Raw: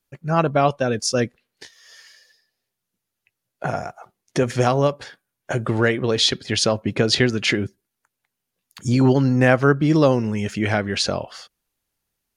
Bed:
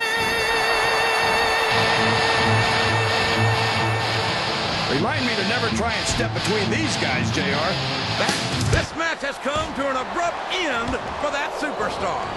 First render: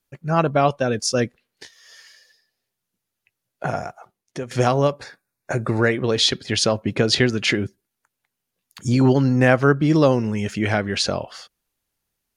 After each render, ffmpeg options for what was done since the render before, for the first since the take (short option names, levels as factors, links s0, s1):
-filter_complex "[0:a]asettb=1/sr,asplit=3[s0][s1][s2];[s0]atrim=end=5.014[s3];[s1]atrim=start=5.01:end=5.92,asetpts=PTS-STARTPTS,afade=t=in:d=0.004:c=qsin,afade=t=out:st=0.906:d=0.004:c=qsin,asuperstop=centerf=3100:order=4:qfactor=3.6[s4];[s2]atrim=start=5.916[s5];[s3][s4]acrossfade=d=0.004:c1=hsin:c2=qsin[s6];[s6][s5]acrossfade=d=0.004:c1=qsin:c2=hsin,asplit=2[s7][s8];[s7]atrim=end=4.51,asetpts=PTS-STARTPTS,afade=t=out:st=3.85:d=0.66:silence=0.188365[s9];[s8]atrim=start=4.51,asetpts=PTS-STARTPTS,afade=t=in:d=0.004:c=hsin:silence=0.188365[s10];[s9][s10]concat=n=2:v=0:a=1"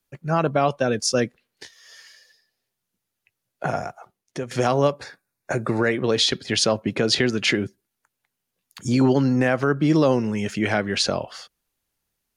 -filter_complex "[0:a]acrossover=split=130[s0][s1];[s0]acompressor=threshold=0.0112:ratio=6[s2];[s2][s1]amix=inputs=2:normalize=0,alimiter=limit=0.355:level=0:latency=1:release=56"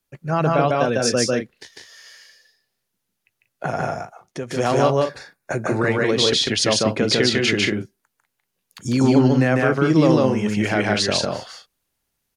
-af "aecho=1:1:148.7|186.6:0.891|0.398"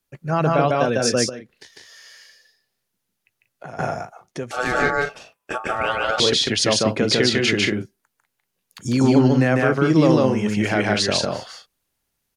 -filter_complex "[0:a]asettb=1/sr,asplit=3[s0][s1][s2];[s0]atrim=end=1.294[s3];[s1]atrim=start=1.29:end=3.79,asetpts=PTS-STARTPTS,afade=t=in:d=0.004:c=qsin,afade=t=out:st=2.496:d=0.004:c=qsin,acompressor=threshold=0.00891:ratio=2:attack=3.2:release=140:knee=1:detection=peak[s4];[s2]atrim=start=3.786[s5];[s3][s4]acrossfade=d=0.004:c1=hsin:c2=qsin[s6];[s6][s5]acrossfade=d=0.004:c1=qsin:c2=hsin,asettb=1/sr,asplit=3[s7][s8][s9];[s7]atrim=end=4.514[s10];[s8]atrim=start=4.51:end=6.2,asetpts=PTS-STARTPTS,afade=t=in:d=0.004:c=qsin,afade=t=out:st=1.686:d=0.004:c=qsin,aeval=exprs='val(0)*sin(2*PI*1000*n/s)':c=same[s11];[s9]atrim=start=6.196[s12];[s10][s11]acrossfade=d=0.004:c1=hsin:c2=qsin[s13];[s13][s12]acrossfade=d=0.004:c1=qsin:c2=hsin"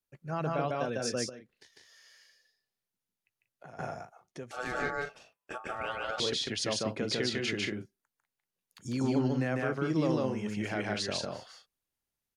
-af "volume=0.211"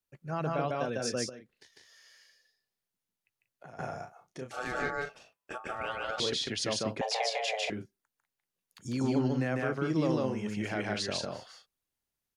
-filter_complex "[0:a]asettb=1/sr,asplit=3[s0][s1][s2];[s0]atrim=end=3.904[s3];[s1]atrim=start=3.9:end=4.63,asetpts=PTS-STARTPTS,afade=t=in:d=0.004:c=qsin,afade=t=out:st=0.726:d=0.004:c=qsin,asplit=2[s4][s5];[s5]adelay=31,volume=0.562[s6];[s4][s6]amix=inputs=2:normalize=0,atrim=end_sample=32193[s7];[s2]atrim=start=4.626[s8];[s3][s7]acrossfade=d=0.004:c1=hsin:c2=qsin[s9];[s9][s8]acrossfade=d=0.004:c1=qsin:c2=hsin,asettb=1/sr,asplit=3[s10][s11][s12];[s10]atrim=end=7.014[s13];[s11]atrim=start=7.01:end=7.7,asetpts=PTS-STARTPTS,afade=t=in:d=0.004:c=qsin,afade=t=out:st=0.686:d=0.004:c=qsin,afreqshift=330[s14];[s12]atrim=start=7.696[s15];[s13][s14]acrossfade=d=0.004:c1=hsin:c2=qsin[s16];[s16][s15]acrossfade=d=0.004:c1=qsin:c2=hsin"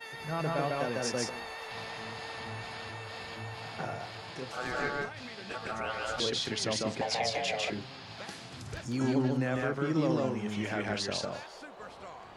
-filter_complex "[1:a]volume=0.0794[s0];[0:a][s0]amix=inputs=2:normalize=0"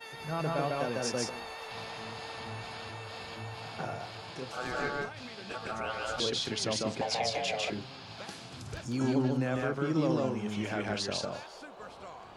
-af "equalizer=f=1900:w=5:g=-5.5"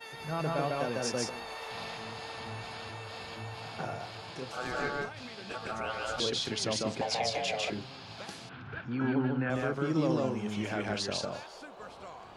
-filter_complex "[0:a]asettb=1/sr,asplit=3[s0][s1][s2];[s0]atrim=end=1.444[s3];[s1]atrim=start=1.44:end=1.97,asetpts=PTS-STARTPTS,afade=t=in:d=0.004:c=qsin,afade=t=out:st=0.526:d=0.004:c=qsin,asplit=2[s4][s5];[s5]adelay=41,volume=0.631[s6];[s4][s6]amix=inputs=2:normalize=0,atrim=end_sample=23373[s7];[s2]atrim=start=1.966[s8];[s3][s7]acrossfade=d=0.004:c1=hsin:c2=qsin[s9];[s9][s8]acrossfade=d=0.004:c1=qsin:c2=hsin,asettb=1/sr,asplit=3[s10][s11][s12];[s10]atrim=end=8.494[s13];[s11]atrim=start=8.49:end=9.5,asetpts=PTS-STARTPTS,afade=t=in:d=0.004:c=qsin,afade=t=out:st=1.006:d=0.004:c=qsin,highpass=110,equalizer=f=350:t=q:w=4:g=-3,equalizer=f=590:t=q:w=4:g=-6,equalizer=f=1500:t=q:w=4:g=10,lowpass=f=3000:w=0.5412,lowpass=f=3000:w=1.3066[s14];[s12]atrim=start=9.496[s15];[s13][s14]acrossfade=d=0.004:c1=hsin:c2=qsin[s16];[s16][s15]acrossfade=d=0.004:c1=qsin:c2=hsin"